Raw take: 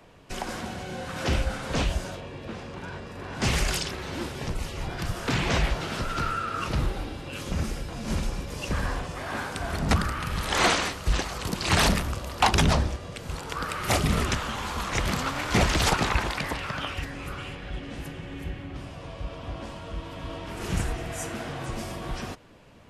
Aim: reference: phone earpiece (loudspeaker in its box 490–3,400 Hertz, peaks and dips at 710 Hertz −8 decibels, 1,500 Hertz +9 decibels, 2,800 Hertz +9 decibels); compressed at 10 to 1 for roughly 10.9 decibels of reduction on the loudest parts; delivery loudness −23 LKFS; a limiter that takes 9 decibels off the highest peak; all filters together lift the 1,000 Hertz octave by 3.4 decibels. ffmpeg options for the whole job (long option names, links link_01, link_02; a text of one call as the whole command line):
ffmpeg -i in.wav -af "equalizer=frequency=1000:width_type=o:gain=3.5,acompressor=threshold=-25dB:ratio=10,alimiter=limit=-20.5dB:level=0:latency=1,highpass=490,equalizer=frequency=710:width_type=q:width=4:gain=-8,equalizer=frequency=1500:width_type=q:width=4:gain=9,equalizer=frequency=2800:width_type=q:width=4:gain=9,lowpass=frequency=3400:width=0.5412,lowpass=frequency=3400:width=1.3066,volume=8.5dB" out.wav